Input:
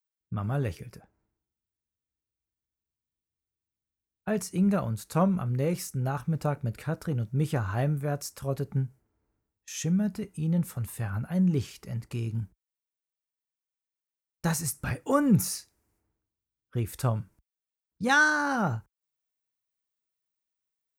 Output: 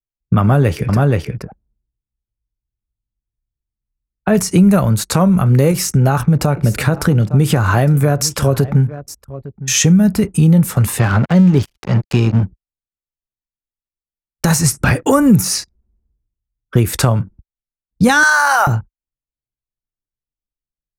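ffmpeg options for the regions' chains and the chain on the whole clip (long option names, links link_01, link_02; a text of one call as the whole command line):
ffmpeg -i in.wav -filter_complex "[0:a]asettb=1/sr,asplit=3[link_01][link_02][link_03];[link_01]atrim=end=0.414[link_04];[link_02]atrim=start=0.41:end=4.35,asetpts=PTS-STARTPTS,afade=type=in:duration=0.004:curve=qsin,afade=type=out:start_time=3.936:duration=0.004:curve=qsin,highshelf=frequency=4700:gain=-7.5,aecho=1:1:476:0.562,atrim=end_sample=173754[link_05];[link_03]atrim=start=4.346[link_06];[link_04][link_05]acrossfade=duration=0.004:curve1=hsin:curve2=qsin[link_07];[link_07][link_06]acrossfade=duration=0.004:curve1=qsin:curve2=hsin,asettb=1/sr,asplit=3[link_08][link_09][link_10];[link_08]atrim=end=5.714[link_11];[link_09]atrim=start=5.71:end=9.8,asetpts=PTS-STARTPTS,afade=type=in:duration=0.004:curve=qsin,afade=type=out:start_time=4.086:duration=0.004:curve=qsin,acompressor=threshold=-31dB:ratio=2:attack=3.2:release=140:knee=1:detection=peak,aecho=1:1:858:0.106,atrim=end_sample=180369[link_12];[link_10]atrim=start=9.796[link_13];[link_11][link_12]acrossfade=duration=0.004:curve1=hsin:curve2=qsin[link_14];[link_14][link_13]acrossfade=duration=0.004:curve1=qsin:curve2=hsin,asettb=1/sr,asplit=3[link_15][link_16][link_17];[link_15]atrim=end=10.994[link_18];[link_16]atrim=start=10.99:end=12.43,asetpts=PTS-STARTPTS,afade=type=in:duration=0.004:curve=qsin,afade=type=out:start_time=1.436:duration=0.004:curve=qsin,lowpass=frequency=6000:width=0.5412,lowpass=frequency=6000:width=1.3066,aeval=exprs='sgn(val(0))*max(abs(val(0))-0.00668,0)':channel_layout=same[link_19];[link_17]atrim=start=12.426[link_20];[link_18][link_19]acrossfade=duration=0.004:curve1=hsin:curve2=qsin[link_21];[link_21][link_20]acrossfade=duration=0.004:curve1=qsin:curve2=hsin,asettb=1/sr,asplit=3[link_22][link_23][link_24];[link_22]atrim=end=18.234[link_25];[link_23]atrim=start=18.23:end=18.67,asetpts=PTS-STARTPTS,afade=type=in:duration=0.004:curve=qsin,afade=type=out:start_time=0.436:duration=0.004:curve=qsin,highpass=frequency=700:width=0.5412,highpass=frequency=700:width=1.3066,acontrast=52[link_26];[link_24]atrim=start=18.666[link_27];[link_25][link_26]acrossfade=duration=0.004:curve1=hsin:curve2=qsin[link_28];[link_28][link_27]acrossfade=duration=0.004:curve1=qsin:curve2=hsin,acrossover=split=130|8000[link_29][link_30][link_31];[link_29]acompressor=threshold=-44dB:ratio=4[link_32];[link_30]acompressor=threshold=-36dB:ratio=4[link_33];[link_31]acompressor=threshold=-52dB:ratio=4[link_34];[link_32][link_33][link_34]amix=inputs=3:normalize=0,anlmdn=0.0000631,alimiter=level_in=25.5dB:limit=-1dB:release=50:level=0:latency=1,volume=-1dB" out.wav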